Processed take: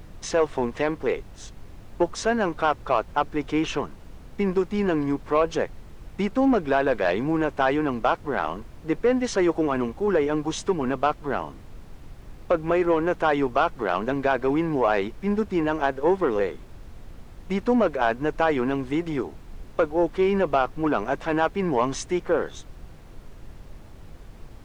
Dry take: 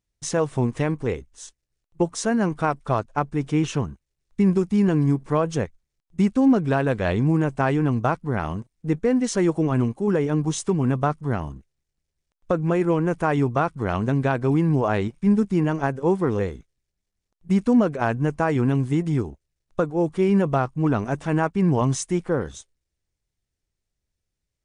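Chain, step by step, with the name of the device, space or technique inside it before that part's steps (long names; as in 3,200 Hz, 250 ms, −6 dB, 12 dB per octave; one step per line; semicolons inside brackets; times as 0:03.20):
aircraft cabin announcement (band-pass filter 390–4,200 Hz; soft clipping −15 dBFS, distortion −16 dB; brown noise bed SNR 15 dB)
level +4.5 dB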